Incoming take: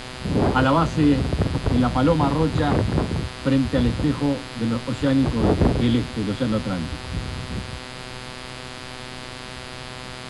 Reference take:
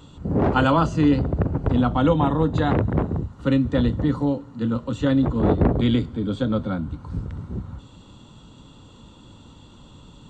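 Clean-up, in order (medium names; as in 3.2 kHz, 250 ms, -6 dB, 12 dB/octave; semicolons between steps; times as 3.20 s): de-hum 126.6 Hz, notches 40; noise print and reduce 11 dB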